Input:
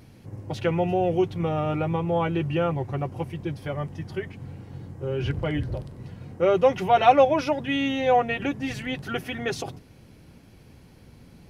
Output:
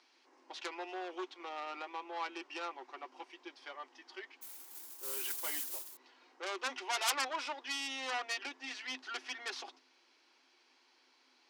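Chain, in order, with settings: tracing distortion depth 0.21 ms; LPF 5300 Hz 24 dB/oct; 4.41–5.97 modulation noise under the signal 15 dB; sine folder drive 11 dB, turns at -5 dBFS; rippled Chebyshev high-pass 250 Hz, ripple 9 dB; differentiator; gain -5 dB

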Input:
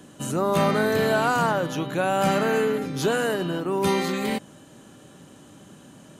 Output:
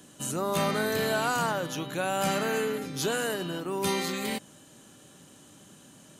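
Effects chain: high shelf 2700 Hz +9.5 dB; gain -7 dB

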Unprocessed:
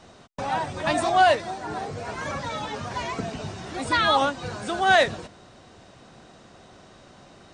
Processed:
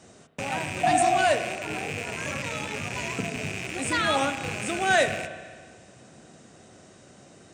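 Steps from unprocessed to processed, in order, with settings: rattling part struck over -43 dBFS, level -19 dBFS; HPF 88 Hz; spectral repair 0.87–1.21, 370–830 Hz after; graphic EQ 1000/4000/8000 Hz -8/-7/+9 dB; spring tank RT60 1.6 s, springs 32/58 ms, chirp 75 ms, DRR 9 dB

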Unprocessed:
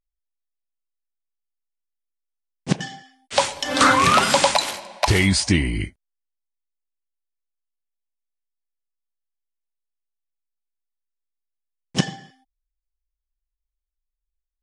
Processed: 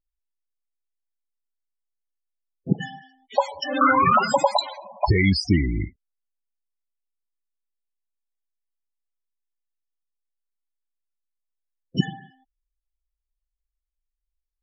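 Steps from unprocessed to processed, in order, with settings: loudest bins only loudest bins 16

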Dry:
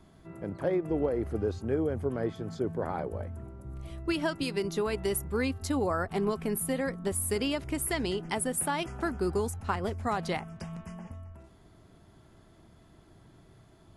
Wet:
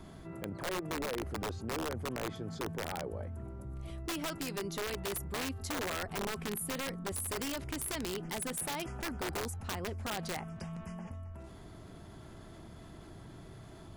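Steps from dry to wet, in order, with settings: wrapped overs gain 22.5 dB; fast leveller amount 50%; gain -8.5 dB

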